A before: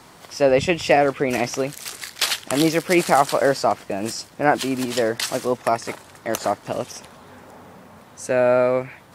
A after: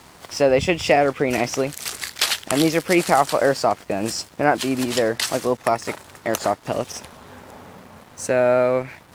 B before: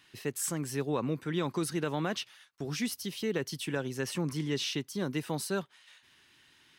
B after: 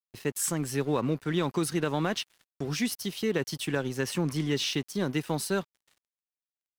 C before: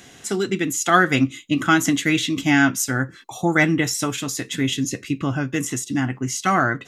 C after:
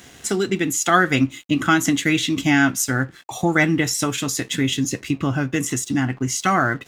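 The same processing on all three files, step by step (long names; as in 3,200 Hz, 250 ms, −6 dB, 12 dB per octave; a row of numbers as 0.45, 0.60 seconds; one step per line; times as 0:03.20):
parametric band 71 Hz +8 dB 0.44 octaves
in parallel at +2.5 dB: downward compressor, threshold −26 dBFS
on the sum: dead-zone distortion −44 dBFS
level −2.5 dB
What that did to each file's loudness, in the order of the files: 0.0, +4.0, +0.5 LU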